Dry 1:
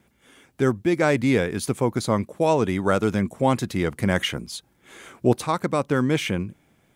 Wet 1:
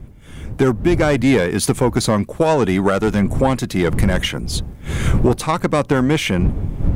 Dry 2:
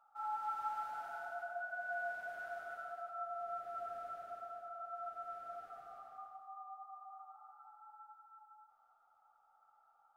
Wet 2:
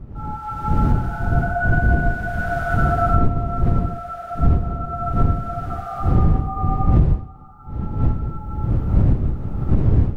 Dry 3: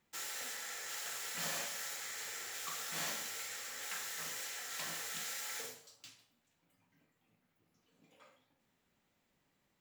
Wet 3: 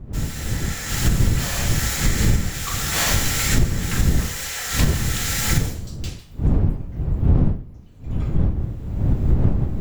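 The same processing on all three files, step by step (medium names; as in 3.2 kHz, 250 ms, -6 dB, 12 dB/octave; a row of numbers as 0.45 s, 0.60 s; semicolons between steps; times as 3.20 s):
single-diode clipper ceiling -14.5 dBFS; wind noise 110 Hz -33 dBFS; recorder AGC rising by 14 dB/s; peak normalisation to -3 dBFS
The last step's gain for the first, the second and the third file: +3.5 dB, +3.5 dB, +2.5 dB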